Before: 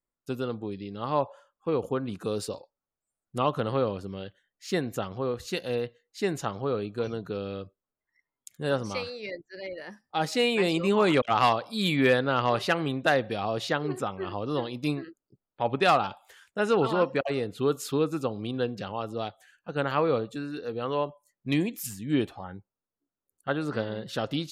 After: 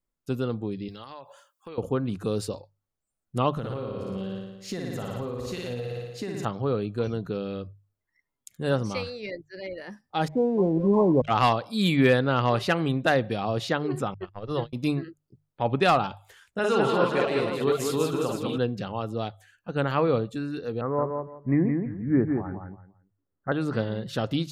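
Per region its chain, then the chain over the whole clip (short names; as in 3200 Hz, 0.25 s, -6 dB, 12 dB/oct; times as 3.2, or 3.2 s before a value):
0.88–1.78 tilt +4 dB/oct + compressor 8:1, threshold -39 dBFS
3.51–6.45 flutter echo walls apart 9.8 m, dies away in 1.1 s + compressor 10:1, threshold -31 dBFS
10.28–11.24 brick-wall FIR low-pass 1100 Hz + backlash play -49.5 dBFS
14.14–14.73 gate -32 dBFS, range -49 dB + bell 260 Hz -14 dB 0.27 oct
16.59–18.58 low shelf 380 Hz -8.5 dB + tapped delay 46/51/166/198/417/518 ms -4.5/-4/-20/-3.5/-10/-8.5 dB
20.81–23.52 steep low-pass 2100 Hz 96 dB/oct + feedback echo 0.169 s, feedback 22%, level -5 dB
whole clip: low shelf 200 Hz +10 dB; notches 50/100/150 Hz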